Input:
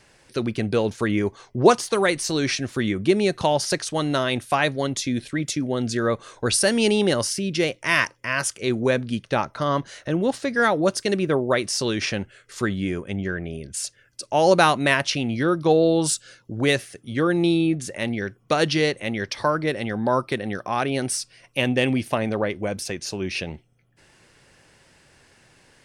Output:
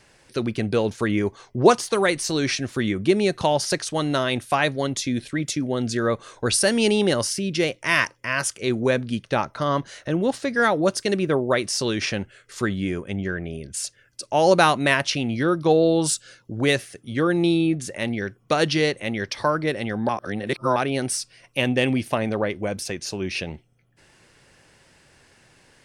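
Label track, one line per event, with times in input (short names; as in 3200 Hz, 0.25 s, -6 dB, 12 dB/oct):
20.090000	20.760000	reverse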